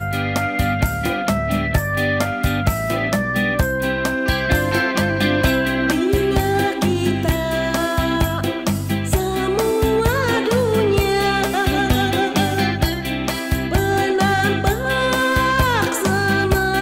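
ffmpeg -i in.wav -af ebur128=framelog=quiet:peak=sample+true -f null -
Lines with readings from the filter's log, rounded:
Integrated loudness:
  I:         -18.7 LUFS
  Threshold: -28.7 LUFS
Loudness range:
  LRA:         2.0 LU
  Threshold: -38.7 LUFS
  LRA low:   -19.7 LUFS
  LRA high:  -17.7 LUFS
Sample peak:
  Peak:       -6.9 dBFS
True peak:
  Peak:       -6.4 dBFS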